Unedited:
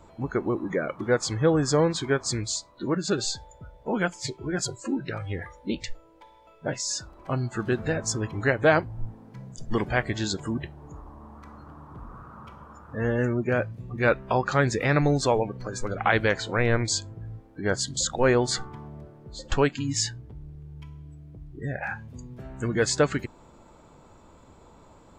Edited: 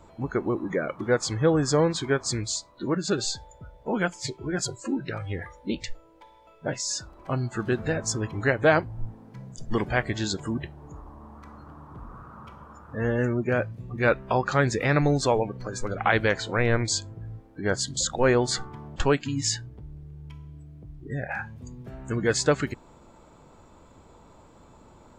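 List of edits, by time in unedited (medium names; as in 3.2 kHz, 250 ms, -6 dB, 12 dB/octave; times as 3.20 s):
18.96–19.48 s: delete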